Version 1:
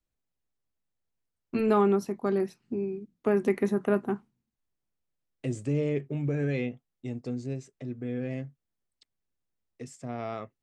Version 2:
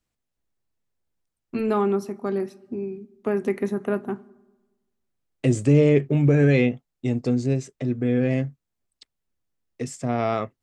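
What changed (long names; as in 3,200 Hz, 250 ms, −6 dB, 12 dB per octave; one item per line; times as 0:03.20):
second voice +11.5 dB
reverb: on, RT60 1.2 s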